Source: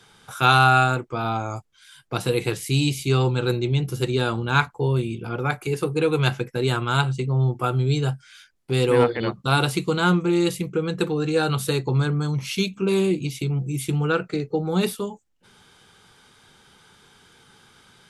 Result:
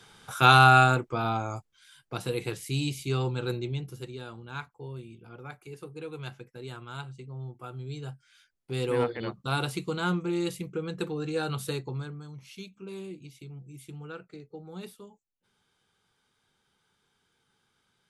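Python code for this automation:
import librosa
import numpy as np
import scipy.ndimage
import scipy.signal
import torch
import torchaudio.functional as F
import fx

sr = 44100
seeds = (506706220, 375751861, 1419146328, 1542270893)

y = fx.gain(x, sr, db=fx.line((0.9, -1.0), (2.16, -8.5), (3.6, -8.5), (4.19, -18.5), (7.65, -18.5), (8.91, -9.0), (11.73, -9.0), (12.24, -19.5)))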